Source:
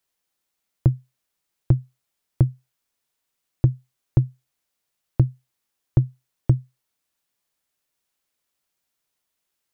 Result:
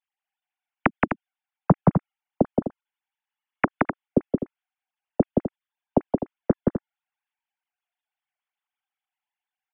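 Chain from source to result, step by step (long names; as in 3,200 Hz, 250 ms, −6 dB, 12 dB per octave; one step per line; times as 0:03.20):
three sine waves on the formant tracks
dynamic equaliser 270 Hz, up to −4 dB, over −24 dBFS, Q 0.74
loudspeakers that aren't time-aligned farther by 59 metres −4 dB, 87 metres −9 dB
boost into a limiter +9 dB
expander for the loud parts 1.5 to 1, over −31 dBFS
level −5.5 dB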